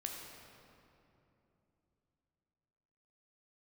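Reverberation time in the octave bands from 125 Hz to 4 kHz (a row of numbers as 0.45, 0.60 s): 4.0, 3.9, 3.2, 2.7, 2.2, 1.7 s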